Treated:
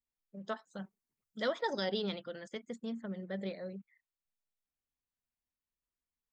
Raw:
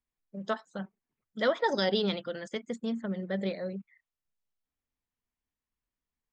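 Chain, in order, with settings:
0:00.70–0:01.67: bass and treble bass +2 dB, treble +8 dB
level −7 dB

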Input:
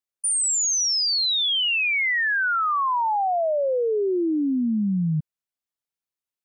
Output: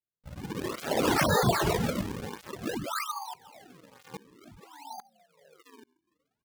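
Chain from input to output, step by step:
high-pass filter 110 Hz 24 dB per octave
parametric band 270 Hz +8.5 dB 2.3 octaves
comb filter 2.4 ms, depth 77%
slap from a distant wall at 250 metres, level −25 dB
reverb whose tail is shaped and stops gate 440 ms rising, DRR −7.5 dB
auto-filter high-pass saw down 1.2 Hz 670–2,400 Hz
automatic gain control gain up to 10.5 dB
band-pass filter sweep 4,500 Hz → 1,400 Hz, 0:02.18–0:05.01
sample-and-hold swept by an LFO 38×, swing 160% 0.55 Hz
0:02.99–0:04.11: low-shelf EQ 150 Hz −10 dB
through-zero flanger with one copy inverted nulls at 0.62 Hz, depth 4.2 ms
level −5.5 dB

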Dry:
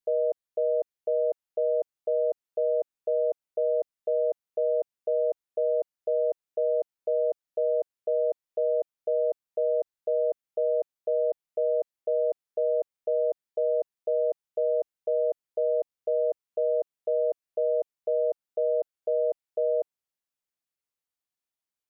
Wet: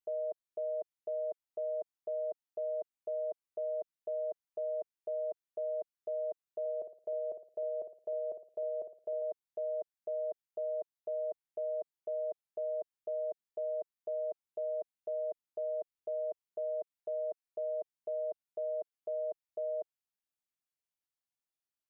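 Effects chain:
parametric band 490 Hz −14.5 dB 0.22 octaves
0:06.60–0:09.22: flutter between parallel walls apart 9.6 metres, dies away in 0.41 s
level −6 dB

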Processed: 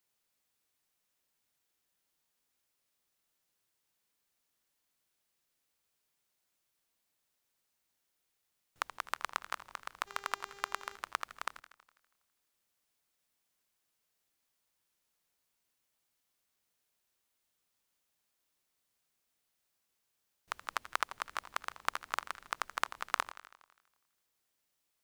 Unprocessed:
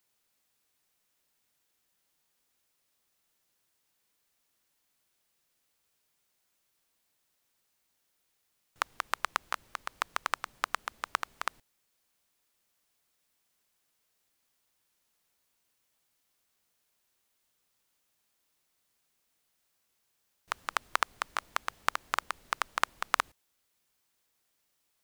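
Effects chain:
0:10.06–0:10.95: hum with harmonics 400 Hz, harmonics 19, −51 dBFS −4 dB per octave
feedback echo with a swinging delay time 82 ms, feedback 61%, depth 213 cents, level −15 dB
level −5 dB

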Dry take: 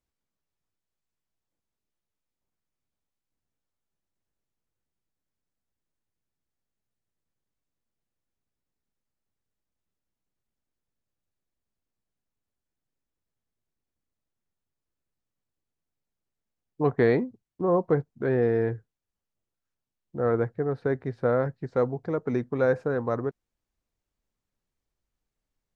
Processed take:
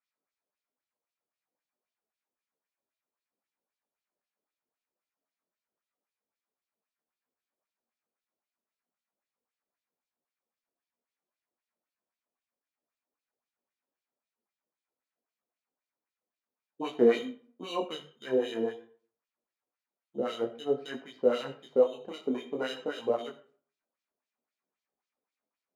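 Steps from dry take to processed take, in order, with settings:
bass and treble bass −5 dB, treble +13 dB
mains-hum notches 50/100/150 Hz
hollow resonant body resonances 230/2,400 Hz, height 14 dB, ringing for 30 ms
in parallel at −3.5 dB: decimation without filtering 13×
on the sum: auto-filter band-pass sine 3.8 Hz 450–3,600 Hz
on a send at −11 dB: convolution reverb RT60 0.45 s, pre-delay 15 ms
on the sum: micro pitch shift up and down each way 18 cents

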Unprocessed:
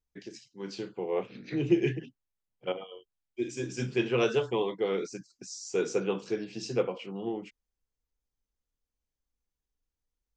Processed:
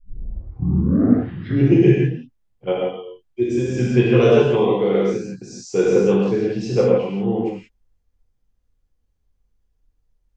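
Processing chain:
turntable start at the beginning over 1.75 s
spectral tilt −2.5 dB per octave
reverb whose tail is shaped and stops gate 200 ms flat, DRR −4.5 dB
level +4.5 dB

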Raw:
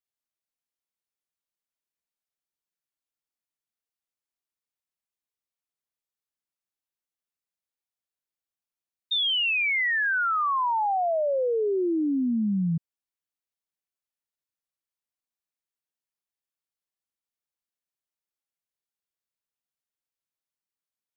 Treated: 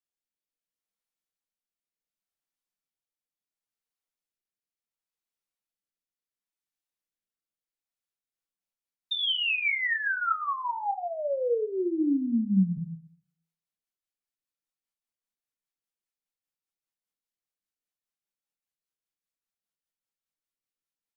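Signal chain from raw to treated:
hum removal 81.92 Hz, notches 4
dynamic equaliser 760 Hz, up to −3 dB, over −35 dBFS, Q 1.5
rotating-speaker cabinet horn 0.7 Hz, later 5 Hz, at 0:07.80
on a send: convolution reverb RT60 0.40 s, pre-delay 3 ms, DRR 5 dB
on the sum: level −1.5 dB

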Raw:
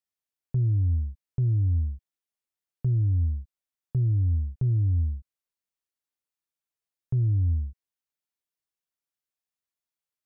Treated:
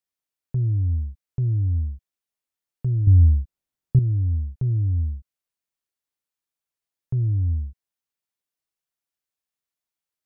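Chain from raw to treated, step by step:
0:03.07–0:03.99: low-shelf EQ 490 Hz +9.5 dB
level +1.5 dB

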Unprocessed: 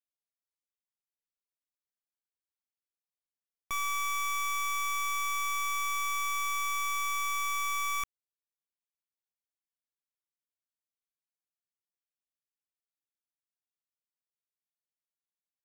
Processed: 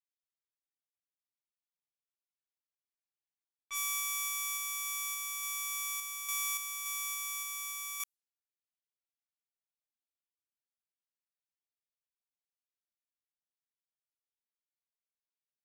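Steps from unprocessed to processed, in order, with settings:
first-order pre-emphasis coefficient 0.97
low-pass that shuts in the quiet parts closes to 2,900 Hz, open at −37.5 dBFS
sample-and-hold tremolo
level +5.5 dB

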